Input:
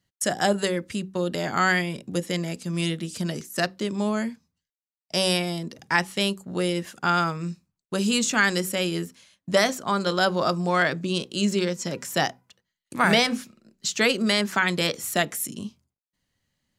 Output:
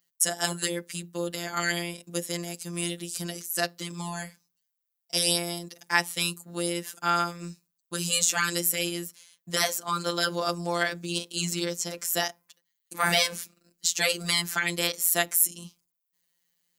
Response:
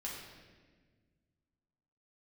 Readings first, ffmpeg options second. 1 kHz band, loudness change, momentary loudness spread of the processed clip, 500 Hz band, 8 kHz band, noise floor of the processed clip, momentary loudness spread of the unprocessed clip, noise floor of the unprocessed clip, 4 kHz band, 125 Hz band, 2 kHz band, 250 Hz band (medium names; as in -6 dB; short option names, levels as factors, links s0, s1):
-5.0 dB, -2.5 dB, 12 LU, -6.5 dB, +4.5 dB, -82 dBFS, 9 LU, under -85 dBFS, -1.0 dB, -7.0 dB, -4.0 dB, -9.0 dB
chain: -af "aemphasis=mode=production:type=bsi,afftfilt=real='hypot(re,im)*cos(PI*b)':imag='0':win_size=1024:overlap=0.75,volume=0.841"